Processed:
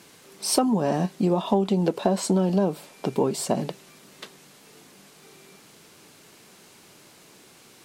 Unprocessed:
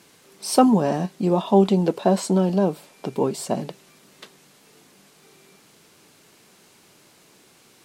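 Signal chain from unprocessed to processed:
downward compressor 12 to 1, threshold −20 dBFS, peak gain reduction 11.5 dB
level +2.5 dB

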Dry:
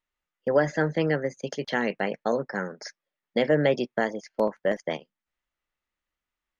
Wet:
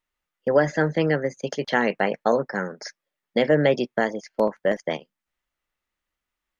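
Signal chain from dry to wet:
0:01.38–0:02.47: dynamic equaliser 960 Hz, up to +4 dB, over −37 dBFS, Q 0.75
level +3 dB

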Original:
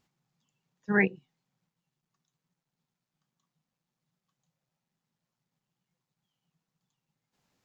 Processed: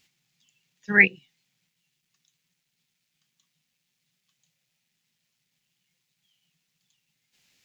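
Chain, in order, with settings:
high shelf with overshoot 1,600 Hz +12.5 dB, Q 1.5

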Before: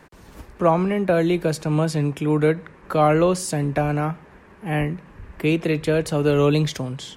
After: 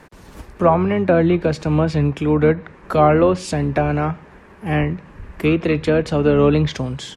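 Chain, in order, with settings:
pitch-shifted copies added −12 semitones −12 dB
treble cut that deepens with the level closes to 2,400 Hz, closed at −14.5 dBFS
level +3.5 dB

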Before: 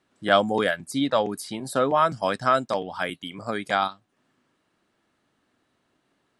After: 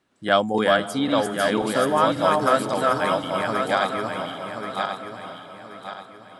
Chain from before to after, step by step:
feedback delay that plays each chunk backwards 540 ms, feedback 59%, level −1.5 dB
feedback delay with all-pass diffusion 484 ms, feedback 48%, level −13 dB

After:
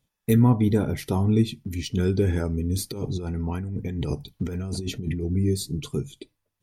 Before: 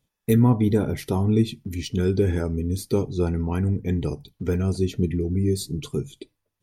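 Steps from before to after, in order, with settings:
0:02.75–0:05.23: compressor whose output falls as the input rises −28 dBFS, ratio −1
parametric band 400 Hz −2.5 dB 0.84 octaves

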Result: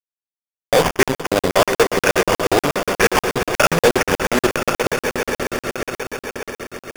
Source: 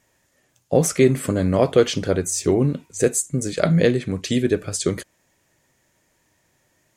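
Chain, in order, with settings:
meter weighting curve ITU-R 468
harmonic generator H 4 −21 dB, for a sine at 2.5 dBFS
auto-filter low-pass saw down 2 Hz 780–1,700 Hz
fuzz pedal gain 29 dB, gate −30 dBFS
decimation without filtering 11×
on a send: echo that builds up and dies away 134 ms, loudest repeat 5, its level −12 dB
on the sum: regular buffer underruns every 0.12 s, samples 2,048, zero, from 0:00.91
highs frequency-modulated by the lows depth 0.18 ms
level +4.5 dB

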